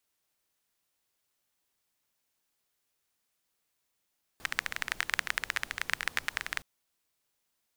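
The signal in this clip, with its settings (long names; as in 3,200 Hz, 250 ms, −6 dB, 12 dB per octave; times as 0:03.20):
rain-like ticks over hiss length 2.22 s, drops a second 18, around 1,800 Hz, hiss −16.5 dB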